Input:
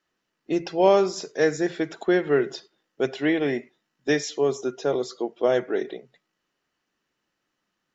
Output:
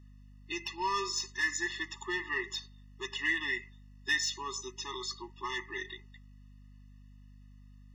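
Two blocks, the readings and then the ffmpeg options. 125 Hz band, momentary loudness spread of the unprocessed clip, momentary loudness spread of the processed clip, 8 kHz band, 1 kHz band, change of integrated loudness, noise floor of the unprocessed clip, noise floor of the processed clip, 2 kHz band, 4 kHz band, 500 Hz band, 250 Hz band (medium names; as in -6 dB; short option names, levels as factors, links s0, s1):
-14.0 dB, 11 LU, 11 LU, no reading, -7.5 dB, -10.0 dB, -79 dBFS, -54 dBFS, 0.0 dB, +0.5 dB, -23.0 dB, -19.5 dB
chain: -filter_complex "[0:a]highpass=1300,asplit=2[s0][s1];[s1]alimiter=limit=0.0631:level=0:latency=1:release=24,volume=0.891[s2];[s0][s2]amix=inputs=2:normalize=0,asoftclip=type=tanh:threshold=0.126,aeval=exprs='val(0)+0.00224*(sin(2*PI*50*n/s)+sin(2*PI*2*50*n/s)/2+sin(2*PI*3*50*n/s)/3+sin(2*PI*4*50*n/s)/4+sin(2*PI*5*50*n/s)/5)':c=same,afftfilt=real='re*eq(mod(floor(b*sr/1024/420),2),0)':imag='im*eq(mod(floor(b*sr/1024/420),2),0)':win_size=1024:overlap=0.75"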